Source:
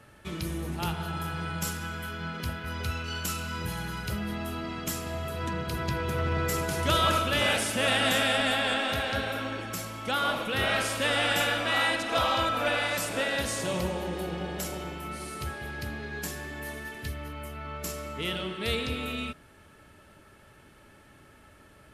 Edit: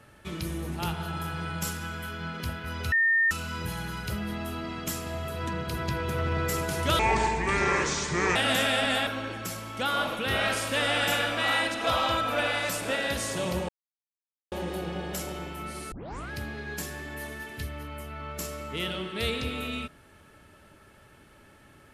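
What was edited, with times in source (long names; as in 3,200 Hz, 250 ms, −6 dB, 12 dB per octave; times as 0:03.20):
0:02.92–0:03.31: beep over 1,820 Hz −19.5 dBFS
0:06.99–0:07.92: play speed 68%
0:08.63–0:09.35: remove
0:13.97: splice in silence 0.83 s
0:15.37: tape start 0.39 s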